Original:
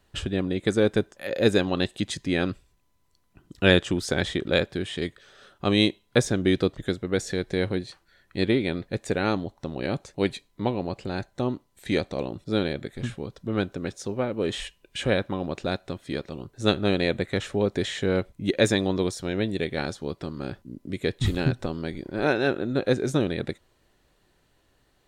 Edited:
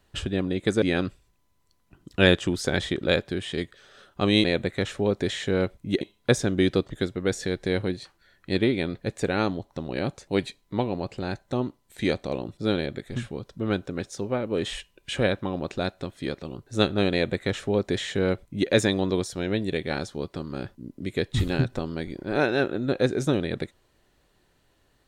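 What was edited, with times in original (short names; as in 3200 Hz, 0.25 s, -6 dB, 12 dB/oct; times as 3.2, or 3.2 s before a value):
0.82–2.26 cut
16.99–18.56 copy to 5.88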